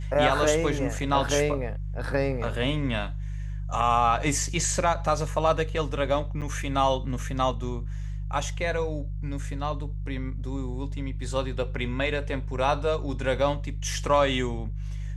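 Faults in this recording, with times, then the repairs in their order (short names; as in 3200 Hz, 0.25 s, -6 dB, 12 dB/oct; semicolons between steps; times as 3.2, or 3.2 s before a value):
hum 50 Hz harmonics 3 -32 dBFS
0.99 gap 3.9 ms
6.41–6.42 gap 7.9 ms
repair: de-hum 50 Hz, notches 3; interpolate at 0.99, 3.9 ms; interpolate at 6.41, 7.9 ms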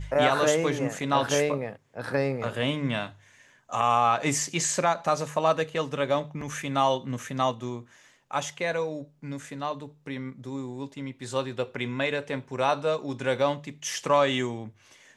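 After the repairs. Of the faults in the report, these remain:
none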